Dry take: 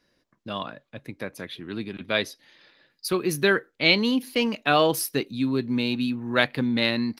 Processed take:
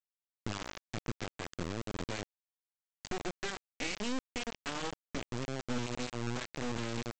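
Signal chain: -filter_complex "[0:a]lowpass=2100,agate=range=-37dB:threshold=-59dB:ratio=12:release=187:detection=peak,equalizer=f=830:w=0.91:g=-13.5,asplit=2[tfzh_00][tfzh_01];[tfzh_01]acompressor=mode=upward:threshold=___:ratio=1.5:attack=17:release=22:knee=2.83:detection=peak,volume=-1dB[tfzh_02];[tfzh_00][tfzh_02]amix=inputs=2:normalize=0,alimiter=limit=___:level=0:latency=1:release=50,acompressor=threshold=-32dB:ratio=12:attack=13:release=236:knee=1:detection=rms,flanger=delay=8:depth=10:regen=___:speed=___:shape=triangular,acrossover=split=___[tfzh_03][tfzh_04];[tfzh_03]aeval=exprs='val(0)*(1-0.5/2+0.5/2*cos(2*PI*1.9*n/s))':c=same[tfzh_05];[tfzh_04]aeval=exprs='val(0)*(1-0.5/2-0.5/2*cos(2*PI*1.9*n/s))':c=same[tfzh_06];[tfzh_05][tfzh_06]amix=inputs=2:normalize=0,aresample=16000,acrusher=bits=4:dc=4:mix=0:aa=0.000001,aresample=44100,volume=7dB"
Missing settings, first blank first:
-39dB, -9dB, -49, 0.87, 450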